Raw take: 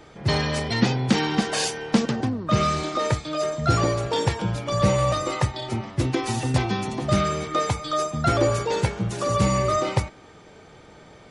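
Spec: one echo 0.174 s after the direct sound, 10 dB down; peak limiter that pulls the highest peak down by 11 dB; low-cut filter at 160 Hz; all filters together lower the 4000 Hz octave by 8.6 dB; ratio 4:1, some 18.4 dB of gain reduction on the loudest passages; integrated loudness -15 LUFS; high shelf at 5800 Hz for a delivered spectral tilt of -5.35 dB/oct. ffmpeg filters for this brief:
-af "highpass=160,equalizer=f=4k:t=o:g=-8.5,highshelf=f=5.8k:g=-7,acompressor=threshold=-39dB:ratio=4,alimiter=level_in=11dB:limit=-24dB:level=0:latency=1,volume=-11dB,aecho=1:1:174:0.316,volume=28.5dB"

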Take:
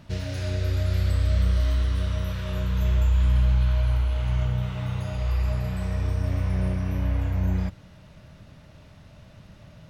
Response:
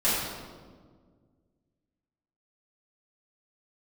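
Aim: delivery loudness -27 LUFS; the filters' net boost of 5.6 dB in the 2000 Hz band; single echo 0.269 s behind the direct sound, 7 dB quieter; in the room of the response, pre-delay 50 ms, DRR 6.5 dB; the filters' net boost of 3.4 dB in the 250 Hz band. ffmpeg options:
-filter_complex "[0:a]equalizer=f=250:t=o:g=5.5,equalizer=f=2k:t=o:g=7,aecho=1:1:269:0.447,asplit=2[a][b];[1:a]atrim=start_sample=2205,adelay=50[c];[b][c]afir=irnorm=-1:irlink=0,volume=-20dB[d];[a][d]amix=inputs=2:normalize=0,volume=-3dB"

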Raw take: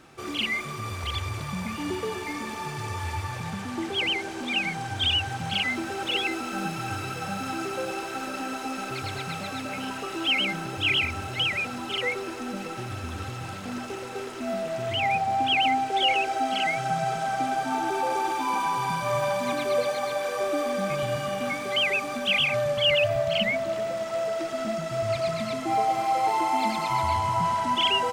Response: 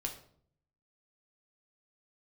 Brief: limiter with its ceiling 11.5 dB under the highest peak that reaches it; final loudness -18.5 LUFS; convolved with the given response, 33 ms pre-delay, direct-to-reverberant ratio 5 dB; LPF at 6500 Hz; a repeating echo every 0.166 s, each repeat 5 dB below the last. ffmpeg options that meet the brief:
-filter_complex "[0:a]lowpass=6.5k,alimiter=limit=-24dB:level=0:latency=1,aecho=1:1:166|332|498|664|830|996|1162:0.562|0.315|0.176|0.0988|0.0553|0.031|0.0173,asplit=2[a][b];[1:a]atrim=start_sample=2205,adelay=33[c];[b][c]afir=irnorm=-1:irlink=0,volume=-5.5dB[d];[a][d]amix=inputs=2:normalize=0,volume=10dB"

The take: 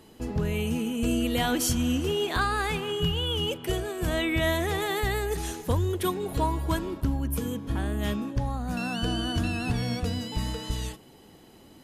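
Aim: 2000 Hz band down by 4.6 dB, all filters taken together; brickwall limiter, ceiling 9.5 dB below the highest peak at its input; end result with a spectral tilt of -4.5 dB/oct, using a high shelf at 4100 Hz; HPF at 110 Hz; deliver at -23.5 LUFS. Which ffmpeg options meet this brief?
-af "highpass=110,equalizer=f=2k:t=o:g=-7,highshelf=f=4.1k:g=4.5,volume=7.5dB,alimiter=limit=-13.5dB:level=0:latency=1"

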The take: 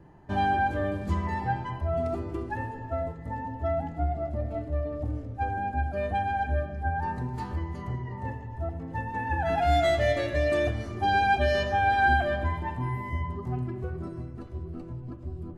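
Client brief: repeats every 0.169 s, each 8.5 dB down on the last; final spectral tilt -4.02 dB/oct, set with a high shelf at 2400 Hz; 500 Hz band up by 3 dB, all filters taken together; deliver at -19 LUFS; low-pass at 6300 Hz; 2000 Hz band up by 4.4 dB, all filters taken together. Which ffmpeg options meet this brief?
-af "lowpass=6.3k,equalizer=f=500:t=o:g=3.5,equalizer=f=2k:t=o:g=3.5,highshelf=f=2.4k:g=5,aecho=1:1:169|338|507|676:0.376|0.143|0.0543|0.0206,volume=6.5dB"

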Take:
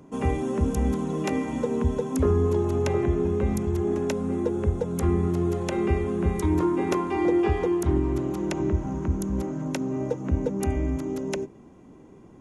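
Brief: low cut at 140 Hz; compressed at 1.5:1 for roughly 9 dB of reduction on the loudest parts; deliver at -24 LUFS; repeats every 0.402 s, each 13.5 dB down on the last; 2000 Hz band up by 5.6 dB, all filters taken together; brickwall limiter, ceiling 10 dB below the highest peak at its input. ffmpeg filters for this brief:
-af "highpass=140,equalizer=f=2k:t=o:g=6.5,acompressor=threshold=-45dB:ratio=1.5,alimiter=level_in=4dB:limit=-24dB:level=0:latency=1,volume=-4dB,aecho=1:1:402|804:0.211|0.0444,volume=12.5dB"

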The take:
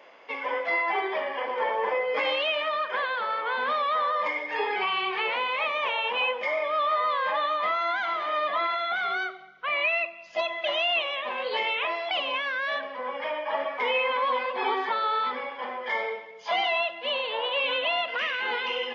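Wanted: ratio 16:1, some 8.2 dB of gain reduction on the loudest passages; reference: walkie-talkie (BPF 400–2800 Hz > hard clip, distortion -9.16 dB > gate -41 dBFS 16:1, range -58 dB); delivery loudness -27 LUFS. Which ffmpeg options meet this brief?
-af "acompressor=threshold=-30dB:ratio=16,highpass=400,lowpass=2.8k,asoftclip=type=hard:threshold=-36dB,agate=range=-58dB:threshold=-41dB:ratio=16,volume=11dB"

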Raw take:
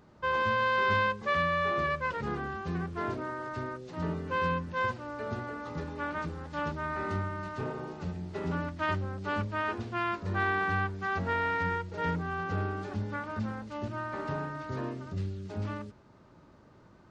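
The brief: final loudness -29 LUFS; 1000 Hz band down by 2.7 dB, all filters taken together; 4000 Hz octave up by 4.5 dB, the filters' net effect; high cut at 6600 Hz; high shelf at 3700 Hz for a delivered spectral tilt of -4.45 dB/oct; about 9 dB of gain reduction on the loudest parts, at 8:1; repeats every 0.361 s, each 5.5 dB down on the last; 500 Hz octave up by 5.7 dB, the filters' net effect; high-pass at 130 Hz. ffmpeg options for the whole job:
-af "highpass=130,lowpass=6.6k,equalizer=f=500:t=o:g=8,equalizer=f=1k:t=o:g=-5.5,highshelf=f=3.7k:g=4.5,equalizer=f=4k:t=o:g=4,acompressor=threshold=-31dB:ratio=8,aecho=1:1:361|722|1083|1444|1805|2166|2527:0.531|0.281|0.149|0.079|0.0419|0.0222|0.0118,volume=6dB"

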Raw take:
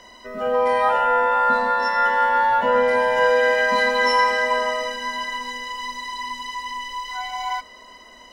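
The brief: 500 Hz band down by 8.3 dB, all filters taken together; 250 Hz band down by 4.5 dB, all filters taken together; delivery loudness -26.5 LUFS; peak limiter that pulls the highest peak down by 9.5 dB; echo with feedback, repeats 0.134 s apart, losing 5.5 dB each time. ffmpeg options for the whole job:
-af "equalizer=f=250:t=o:g=-3,equalizer=f=500:t=o:g=-8.5,alimiter=limit=-18dB:level=0:latency=1,aecho=1:1:134|268|402|536|670|804|938:0.531|0.281|0.149|0.079|0.0419|0.0222|0.0118,volume=-1dB"

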